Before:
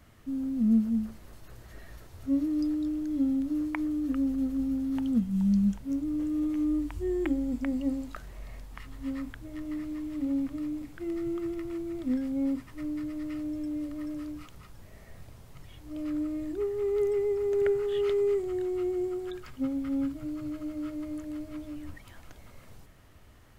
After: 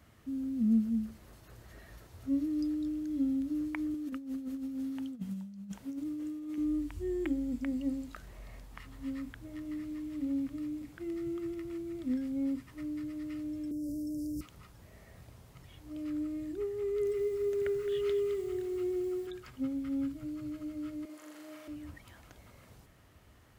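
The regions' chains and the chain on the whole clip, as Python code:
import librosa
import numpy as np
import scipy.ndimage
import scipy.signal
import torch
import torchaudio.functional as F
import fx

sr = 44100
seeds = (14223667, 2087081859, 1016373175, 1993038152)

y = fx.chain(x, sr, fx.highpass(hz=290.0, slope=6),
    fx.over_compress(threshold_db=-34.0, ratio=-0.5), at=(3.94, 6.58))
y = fx.chain(y, sr, fx.cheby1_bandstop(low_hz=580.0, high_hz=5200.0, order=4),
    fx.high_shelf(hz=4100.0, db=6.0),
    fx.env_flatten(amount_pct=100), at=(13.71, 14.41))
y = fx.chain(y, sr, fx.notch(hz=830.0, q=6.4),
    fx.echo_crushed(ms=214, feedback_pct=35, bits=8, wet_db=-10), at=(16.84, 19.27))
y = fx.chain(y, sr, fx.highpass(hz=480.0, slope=12),
    fx.room_flutter(wall_m=7.2, rt60_s=1.4), at=(21.05, 21.68))
y = fx.dynamic_eq(y, sr, hz=820.0, q=0.91, threshold_db=-47.0, ratio=4.0, max_db=-6)
y = scipy.signal.sosfilt(scipy.signal.butter(2, 47.0, 'highpass', fs=sr, output='sos'), y)
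y = F.gain(torch.from_numpy(y), -3.0).numpy()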